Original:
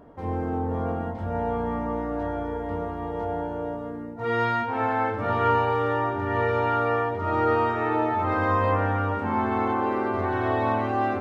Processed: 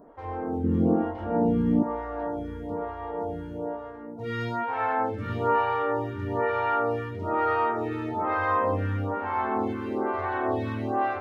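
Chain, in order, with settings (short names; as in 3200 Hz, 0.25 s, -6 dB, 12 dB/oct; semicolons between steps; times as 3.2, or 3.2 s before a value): 0.64–1.83 small resonant body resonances 200/310/2900 Hz, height 16 dB, ringing for 55 ms; photocell phaser 1.1 Hz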